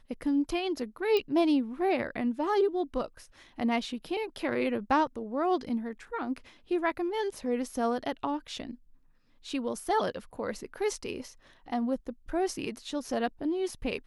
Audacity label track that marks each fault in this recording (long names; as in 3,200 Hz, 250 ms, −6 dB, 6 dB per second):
1.170000	1.170000	click −17 dBFS